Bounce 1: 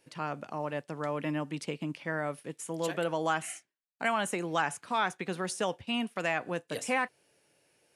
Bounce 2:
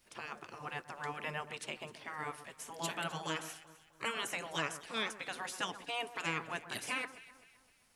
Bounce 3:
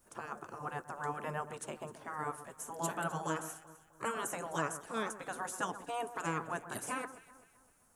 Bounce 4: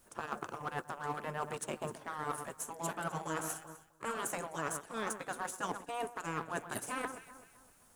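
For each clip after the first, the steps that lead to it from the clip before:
spectral gate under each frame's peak -10 dB weak; echo whose repeats swap between lows and highs 129 ms, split 1.6 kHz, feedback 60%, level -12.5 dB; added noise pink -78 dBFS; trim +1 dB
high-order bell 3.2 kHz -14 dB; trim +3.5 dB
companding laws mixed up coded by A; reverse; compression 6:1, threshold -48 dBFS, peak gain reduction 16.5 dB; reverse; trim +13 dB

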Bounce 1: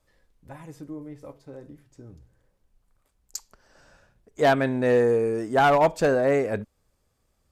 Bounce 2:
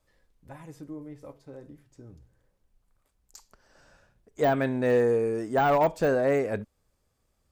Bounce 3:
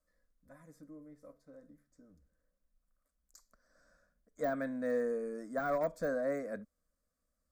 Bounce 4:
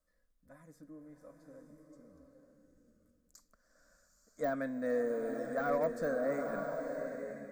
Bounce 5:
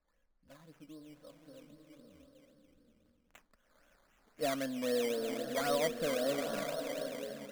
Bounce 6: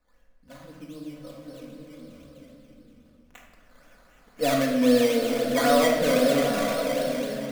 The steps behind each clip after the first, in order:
de-esser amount 85%; trim -2.5 dB
static phaser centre 570 Hz, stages 8; trim -8.5 dB
swelling reverb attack 930 ms, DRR 4.5 dB
decimation with a swept rate 13×, swing 60% 3.8 Hz
simulated room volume 1000 m³, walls mixed, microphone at 1.9 m; trim +8 dB

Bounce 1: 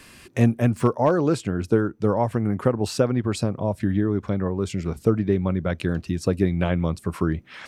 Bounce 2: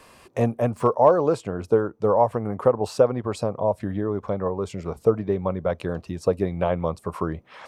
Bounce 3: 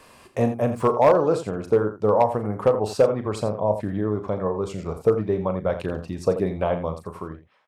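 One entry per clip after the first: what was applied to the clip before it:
high-order bell 720 Hz +11 dB; trim -6 dB
fade out at the end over 1.11 s; loudspeakers at several distances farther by 13 m -10 dB, 29 m -11 dB; hard clipper -9 dBFS, distortion -23 dB

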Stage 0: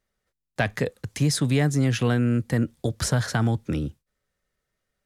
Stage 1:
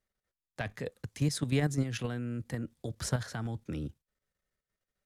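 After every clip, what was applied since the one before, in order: level held to a coarse grid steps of 10 dB; trim -5.5 dB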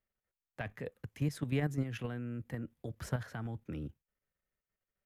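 high-order bell 6 kHz -9.5 dB; trim -4 dB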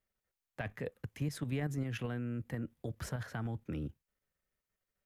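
peak limiter -28.5 dBFS, peak gain reduction 7.5 dB; trim +2 dB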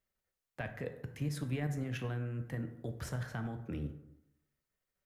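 plate-style reverb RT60 0.86 s, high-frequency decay 0.5×, DRR 6.5 dB; trim -1 dB

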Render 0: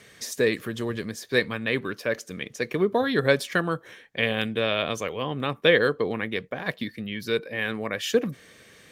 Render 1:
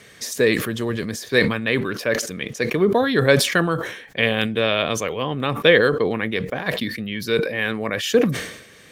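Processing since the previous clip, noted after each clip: decay stretcher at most 72 dB/s; trim +4.5 dB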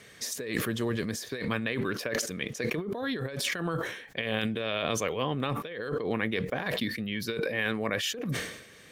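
compressor with a negative ratio -23 dBFS, ratio -1; trim -8 dB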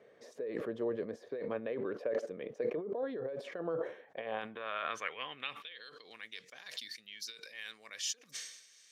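band-pass sweep 530 Hz -> 5.9 kHz, 3.91–6.23 s; trim +1.5 dB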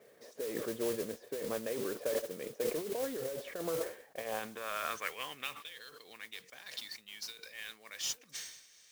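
modulation noise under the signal 10 dB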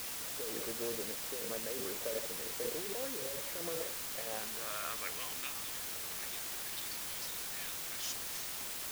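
word length cut 6-bit, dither triangular; trim -5.5 dB

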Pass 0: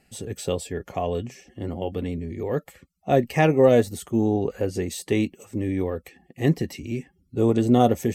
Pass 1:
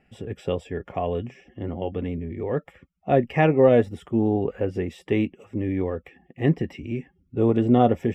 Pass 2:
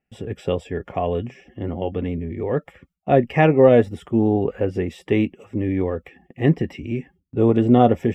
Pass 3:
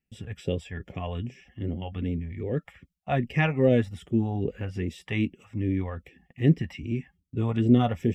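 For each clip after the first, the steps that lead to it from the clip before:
Savitzky-Golay filter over 25 samples
gate with hold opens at -46 dBFS; trim +3.5 dB
phase shifter stages 2, 2.5 Hz, lowest notch 330–1100 Hz; trim -2.5 dB

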